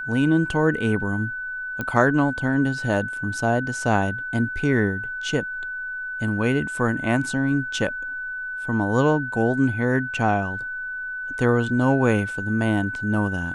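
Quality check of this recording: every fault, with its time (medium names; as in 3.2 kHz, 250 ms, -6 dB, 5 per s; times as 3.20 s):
whine 1.5 kHz -28 dBFS
1.81 s: pop -14 dBFS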